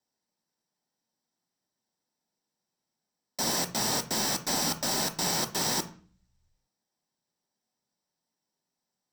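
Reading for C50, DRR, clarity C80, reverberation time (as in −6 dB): 13.5 dB, 6.5 dB, 18.5 dB, 0.45 s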